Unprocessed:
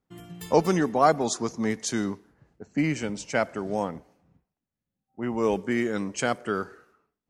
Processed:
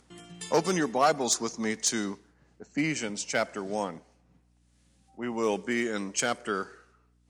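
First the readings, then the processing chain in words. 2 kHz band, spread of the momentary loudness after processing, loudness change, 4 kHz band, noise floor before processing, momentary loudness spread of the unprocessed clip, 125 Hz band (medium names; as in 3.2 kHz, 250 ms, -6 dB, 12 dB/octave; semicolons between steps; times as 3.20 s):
0.0 dB, 13 LU, -2.5 dB, +3.5 dB, under -85 dBFS, 13 LU, -6.5 dB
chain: treble shelf 2.2 kHz +9.5 dB; resampled via 22.05 kHz; one-sided clip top -14.5 dBFS; high-pass 160 Hz; upward compressor, threshold -46 dBFS; hum 60 Hz, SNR 35 dB; trim -3.5 dB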